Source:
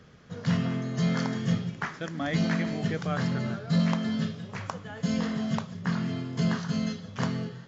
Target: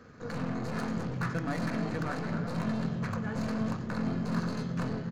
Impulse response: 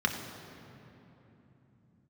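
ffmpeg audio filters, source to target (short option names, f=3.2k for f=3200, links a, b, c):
-filter_complex "[0:a]atempo=1.5,aeval=exprs='(tanh(70.8*val(0)+0.65)-tanh(0.65))/70.8':c=same,asplit=2[a][b];[1:a]atrim=start_sample=2205,highshelf=f=5.5k:g=-8[c];[b][c]afir=irnorm=-1:irlink=0,volume=-10dB[d];[a][d]amix=inputs=2:normalize=0,volume=3dB"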